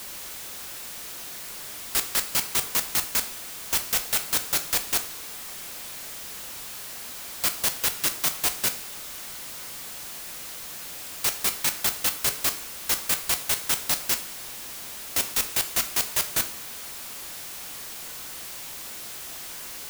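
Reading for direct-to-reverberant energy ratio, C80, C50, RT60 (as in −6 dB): 8.0 dB, 17.0 dB, 13.0 dB, 0.50 s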